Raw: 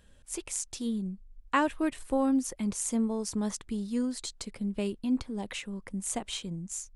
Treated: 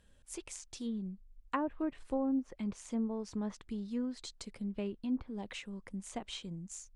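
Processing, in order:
treble cut that deepens with the level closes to 780 Hz, closed at −22.5 dBFS
level −6 dB

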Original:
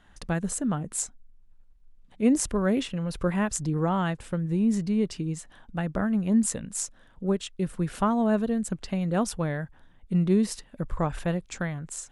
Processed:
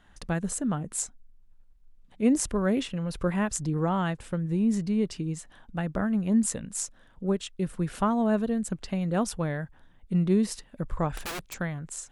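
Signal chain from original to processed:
0:11.17–0:11.58: wrap-around overflow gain 28.5 dB
level −1 dB

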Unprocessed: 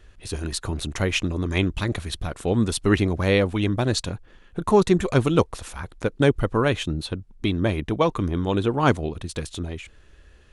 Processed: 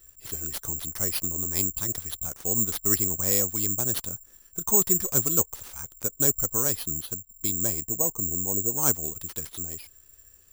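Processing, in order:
0:07.88–0:08.78: drawn EQ curve 780 Hz 0 dB, 1,600 Hz −16 dB, 3,500 Hz −22 dB
bad sample-rate conversion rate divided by 6×, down none, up zero stuff
dynamic equaliser 2,500 Hz, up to −5 dB, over −37 dBFS, Q 2.1
level −12 dB

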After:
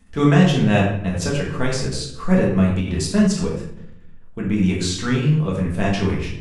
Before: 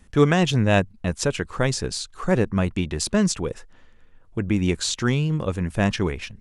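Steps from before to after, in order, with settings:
rectangular room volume 200 cubic metres, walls mixed, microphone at 1.6 metres
every ending faded ahead of time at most 100 dB per second
level −4 dB

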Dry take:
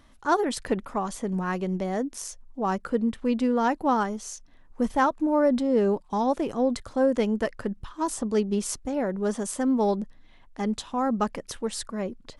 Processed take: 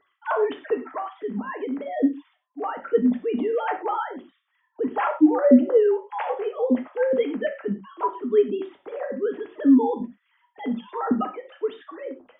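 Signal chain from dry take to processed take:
three sine waves on the formant tracks
reverb whose tail is shaped and stops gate 140 ms falling, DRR 3 dB

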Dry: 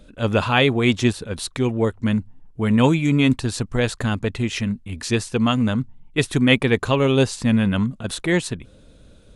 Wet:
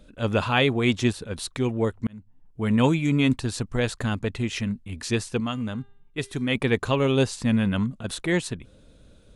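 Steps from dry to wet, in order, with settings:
0:02.07–0:02.69: fade in
0:05.40–0:06.55: tuned comb filter 400 Hz, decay 0.67 s, mix 50%
level −4 dB

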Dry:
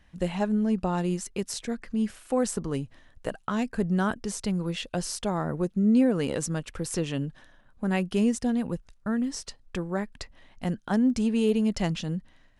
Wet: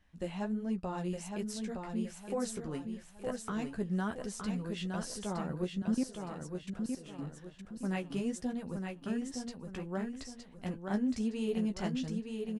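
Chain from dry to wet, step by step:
flanger 1.4 Hz, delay 9.7 ms, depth 7.1 ms, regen −25%
0:05.82–0:07.19: output level in coarse steps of 23 dB
repeating echo 915 ms, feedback 36%, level −5 dB
level −6 dB

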